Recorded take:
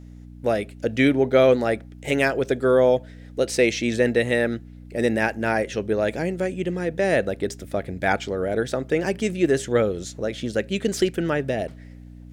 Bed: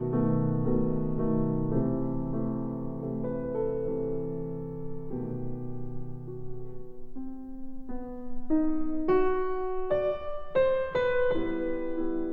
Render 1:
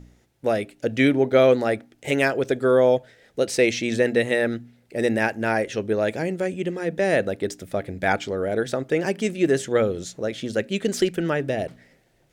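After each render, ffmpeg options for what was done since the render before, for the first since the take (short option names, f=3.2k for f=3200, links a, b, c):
-af "bandreject=f=60:t=h:w=4,bandreject=f=120:t=h:w=4,bandreject=f=180:t=h:w=4,bandreject=f=240:t=h:w=4,bandreject=f=300:t=h:w=4"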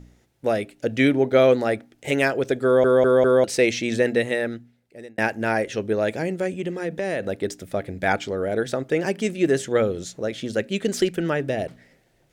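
-filter_complex "[0:a]asettb=1/sr,asplit=3[a][b][c];[a]atrim=end=6.534[d];[b]atrim=start=6.53:end=7.29,asetpts=PTS-STARTPTS,afade=t=in:d=0.004:c=qsin,afade=t=out:st=0.756:d=0.004:c=qsin,acompressor=threshold=-22dB:ratio=4:attack=3.2:release=140:knee=1:detection=peak[e];[c]atrim=start=7.286[f];[d][e]acrossfade=d=0.004:c1=hsin:c2=qsin[g];[g][f]acrossfade=d=0.004:c1=qsin:c2=hsin,asplit=6[h][i][j][k][l][m];[h]atrim=end=2.842[n];[i]atrim=start=2.638:end=2.842[o];[j]atrim=start=2.638:end=2.842[p];[k]atrim=start=2.638:end=2.842[q];[l]atrim=start=3.438:end=5.18,asetpts=PTS-STARTPTS,afade=t=out:st=0.662:d=1.08[r];[m]atrim=start=5.18,asetpts=PTS-STARTPTS,afade=t=in:d=0.004:c=hsin[s];[n][o]acrossfade=d=0.004:c1=hsin:c2=hsin[t];[t][p]acrossfade=d=0.004:c1=hsin:c2=hsin[u];[u][q]acrossfade=d=0.004:c1=hsin:c2=hsin[v];[r][s]concat=n=2:v=0:a=1[w];[v][w]acrossfade=d=0.004:c1=hsin:c2=hsin"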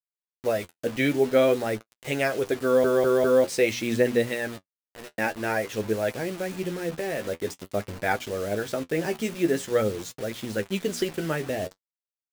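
-af "acrusher=bits=5:mix=0:aa=0.000001,flanger=delay=7.7:depth=5.7:regen=40:speed=0.49:shape=triangular"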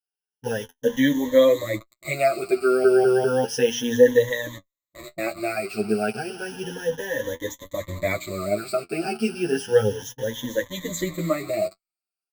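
-filter_complex "[0:a]afftfilt=real='re*pow(10,23/40*sin(2*PI*(1.1*log(max(b,1)*sr/1024/100)/log(2)-(0.32)*(pts-256)/sr)))':imag='im*pow(10,23/40*sin(2*PI*(1.1*log(max(b,1)*sr/1024/100)/log(2)-(0.32)*(pts-256)/sr)))':win_size=1024:overlap=0.75,asplit=2[a][b];[b]adelay=7.9,afreqshift=0.72[c];[a][c]amix=inputs=2:normalize=1"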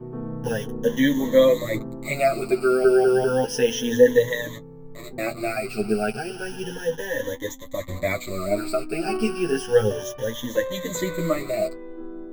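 -filter_complex "[1:a]volume=-6dB[a];[0:a][a]amix=inputs=2:normalize=0"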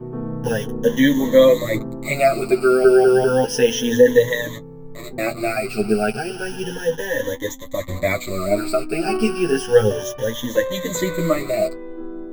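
-af "volume=4.5dB,alimiter=limit=-2dB:level=0:latency=1"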